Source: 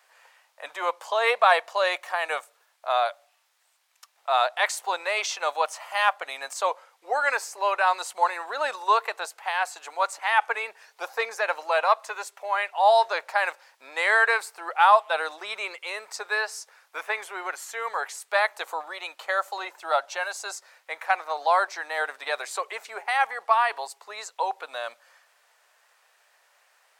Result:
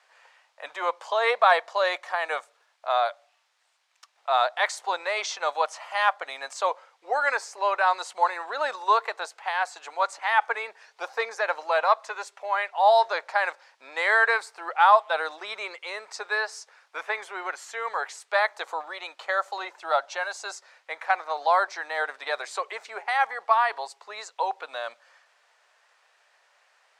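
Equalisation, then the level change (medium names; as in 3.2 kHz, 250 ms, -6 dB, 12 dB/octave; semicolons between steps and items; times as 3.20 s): low-pass 6.4 kHz 12 dB/octave; dynamic bell 2.7 kHz, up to -6 dB, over -44 dBFS, Q 4.3; 0.0 dB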